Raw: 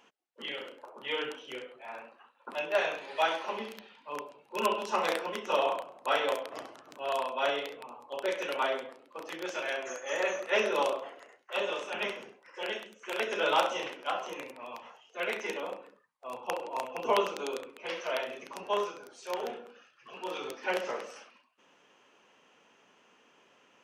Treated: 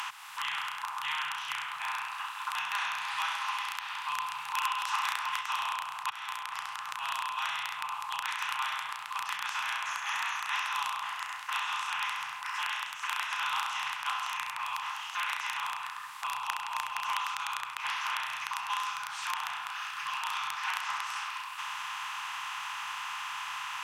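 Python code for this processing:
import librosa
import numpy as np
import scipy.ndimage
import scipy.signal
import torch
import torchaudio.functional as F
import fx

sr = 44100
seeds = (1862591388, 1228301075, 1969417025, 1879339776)

y = fx.edit(x, sr, fx.clip_gain(start_s=4.2, length_s=1.21, db=7.5),
    fx.fade_in_span(start_s=6.1, length_s=1.96), tone=tone)
y = fx.bin_compress(y, sr, power=0.4)
y = scipy.signal.sosfilt(scipy.signal.cheby2(4, 40, [200.0, 600.0], 'bandstop', fs=sr, output='sos'), y)
y = fx.band_squash(y, sr, depth_pct=70)
y = y * 10.0 ** (-7.0 / 20.0)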